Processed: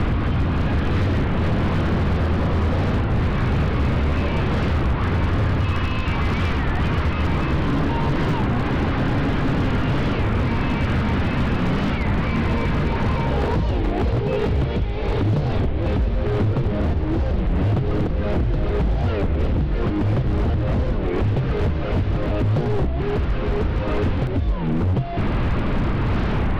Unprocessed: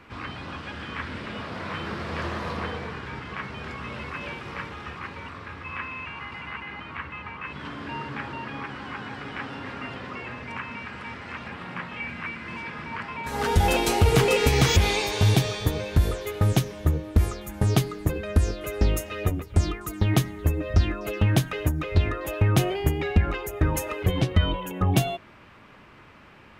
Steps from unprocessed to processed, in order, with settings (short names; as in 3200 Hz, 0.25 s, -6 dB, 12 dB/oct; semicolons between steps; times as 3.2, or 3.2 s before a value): delta modulation 32 kbps, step -20 dBFS; LPF 3900 Hz 24 dB/oct; tilt -4.5 dB/oct; compressor 6:1, threshold -15 dBFS, peak gain reduction 18 dB; on a send: thinning echo 91 ms, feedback 83%, high-pass 1200 Hz, level -9.5 dB; on the sum: echoes that change speed 0.573 s, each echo +2 st, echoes 2, each echo -6 dB; wavefolder -14 dBFS; record warp 33 1/3 rpm, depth 250 cents